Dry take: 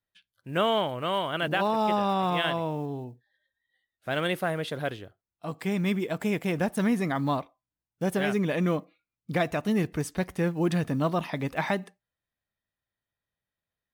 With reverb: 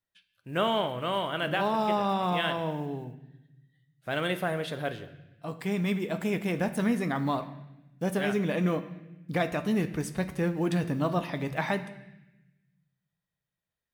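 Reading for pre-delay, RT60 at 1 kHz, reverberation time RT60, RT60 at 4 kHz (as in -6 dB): 10 ms, 0.90 s, 0.95 s, 1.0 s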